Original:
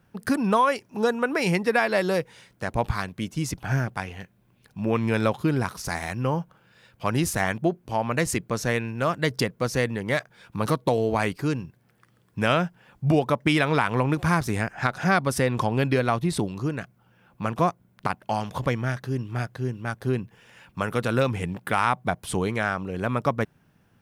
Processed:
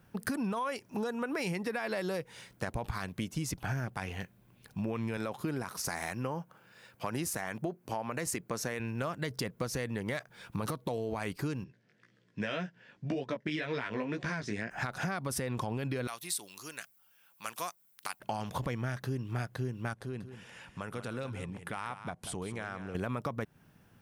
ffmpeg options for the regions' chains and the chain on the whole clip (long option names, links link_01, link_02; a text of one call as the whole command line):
ffmpeg -i in.wav -filter_complex "[0:a]asettb=1/sr,asplit=3[link_01][link_02][link_03];[link_01]atrim=end=5.174[link_04];[link_02]atrim=start=5.17:end=8.8,asetpts=PTS-STARTPTS,afade=type=in:duration=0.004:curve=qsin,afade=type=out:start_time=3.626:duration=0.004:curve=qsin,highpass=frequency=210:poles=1,equalizer=frequency=3400:width=2.1:gain=-3.5[link_05];[link_03]atrim=start=8.796[link_06];[link_04][link_05]acrossfade=duration=0.004:curve1=hsin:curve2=qsin[link_07];[link_07][link_06]acrossfade=duration=0.004:curve1=qsin:curve2=hsin,asettb=1/sr,asplit=3[link_08][link_09][link_10];[link_08]atrim=end=11.644[link_11];[link_09]atrim=start=11.64:end=14.71,asetpts=PTS-STARTPTS,afade=type=in:duration=0.004:curve=qsin,afade=type=out:start_time=3.066:duration=0.004:curve=qsin,highpass=170,equalizer=frequency=820:width_type=q:width=4:gain=-10,equalizer=frequency=1200:width_type=q:width=4:gain=-9,equalizer=frequency=1800:width_type=q:width=4:gain=5,lowpass=frequency=6300:width=0.5412,lowpass=frequency=6300:width=1.3066,flanger=delay=15:depth=4.7:speed=1.9[link_12];[link_10]atrim=start=14.706[link_13];[link_11][link_12]acrossfade=duration=0.004:curve1=hsin:curve2=qsin[link_14];[link_14][link_13]acrossfade=duration=0.004:curve1=qsin:curve2=hsin,asettb=1/sr,asplit=3[link_15][link_16][link_17];[link_15]atrim=end=16.074[link_18];[link_16]atrim=start=16.07:end=18.2,asetpts=PTS-STARTPTS,afade=type=in:duration=0.004:curve=qsin,afade=type=out:start_time=2.126:duration=0.004:curve=qsin,aderivative,acontrast=33[link_19];[link_17]atrim=start=18.196[link_20];[link_18][link_19]acrossfade=duration=0.004:curve1=hsin:curve2=qsin[link_21];[link_21][link_20]acrossfade=duration=0.004:curve1=qsin:curve2=hsin,asettb=1/sr,asplit=3[link_22][link_23][link_24];[link_22]atrim=end=19.934[link_25];[link_23]atrim=start=19.93:end=22.95,asetpts=PTS-STARTPTS,afade=type=in:duration=0.004:curve=qsin,afade=type=out:start_time=3.016:duration=0.004:curve=qsin,lowpass=frequency=11000:width=0.5412,lowpass=frequency=11000:width=1.3066,acompressor=threshold=-46dB:ratio=2:attack=3.2:release=140:knee=1:detection=peak,aecho=1:1:188:0.282,atrim=end_sample=133182[link_26];[link_24]atrim=start=22.946[link_27];[link_25][link_26]acrossfade=duration=0.004:curve1=hsin:curve2=qsin[link_28];[link_28][link_27]acrossfade=duration=0.004:curve1=qsin:curve2=hsin,highshelf=frequency=8600:gain=5,alimiter=limit=-17dB:level=0:latency=1:release=40,acompressor=threshold=-32dB:ratio=5" out.wav